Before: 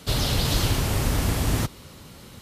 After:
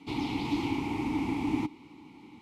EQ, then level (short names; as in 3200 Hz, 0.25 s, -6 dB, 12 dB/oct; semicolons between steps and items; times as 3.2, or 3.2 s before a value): vowel filter u; +8.0 dB